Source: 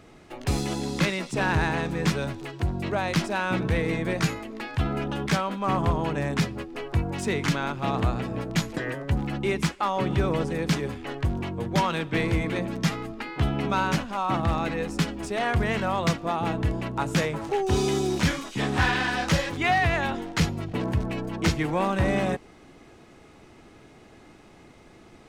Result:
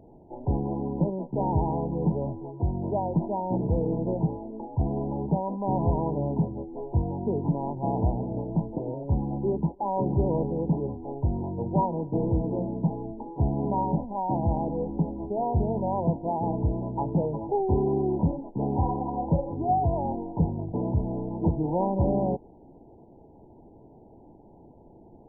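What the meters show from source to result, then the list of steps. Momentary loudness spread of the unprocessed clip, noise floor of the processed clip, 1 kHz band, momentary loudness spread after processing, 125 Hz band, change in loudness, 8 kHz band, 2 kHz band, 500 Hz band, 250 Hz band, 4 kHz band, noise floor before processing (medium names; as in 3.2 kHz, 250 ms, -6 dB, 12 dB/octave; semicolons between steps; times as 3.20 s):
6 LU, -52 dBFS, -1.5 dB, 5 LU, 0.0 dB, -1.5 dB, under -40 dB, under -40 dB, 0.0 dB, 0.0 dB, under -40 dB, -51 dBFS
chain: brick-wall FIR low-pass 1 kHz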